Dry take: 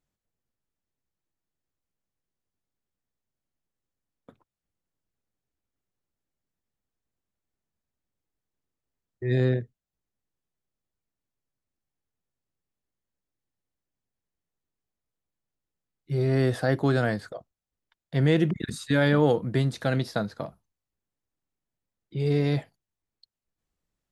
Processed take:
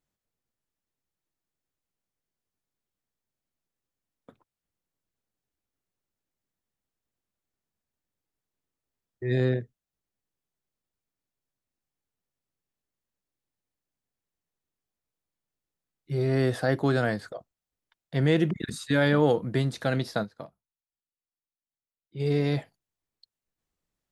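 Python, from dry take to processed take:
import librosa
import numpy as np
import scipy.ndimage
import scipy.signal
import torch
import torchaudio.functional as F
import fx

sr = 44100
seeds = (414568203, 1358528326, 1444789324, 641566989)

y = fx.low_shelf(x, sr, hz=150.0, db=-4.0)
y = fx.upward_expand(y, sr, threshold_db=-50.0, expansion=1.5, at=(20.23, 22.19), fade=0.02)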